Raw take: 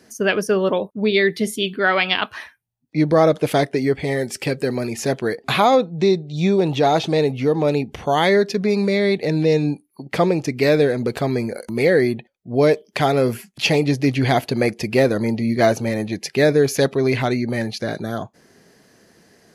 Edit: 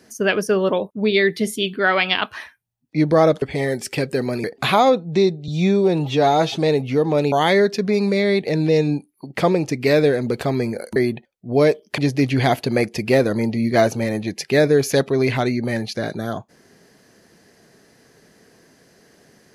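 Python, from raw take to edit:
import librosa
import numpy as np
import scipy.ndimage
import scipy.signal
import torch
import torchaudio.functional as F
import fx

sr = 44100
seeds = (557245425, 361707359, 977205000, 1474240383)

y = fx.edit(x, sr, fx.cut(start_s=3.42, length_s=0.49),
    fx.cut(start_s=4.93, length_s=0.37),
    fx.stretch_span(start_s=6.34, length_s=0.72, factor=1.5),
    fx.cut(start_s=7.82, length_s=0.26),
    fx.cut(start_s=11.72, length_s=0.26),
    fx.cut(start_s=13.0, length_s=0.83), tone=tone)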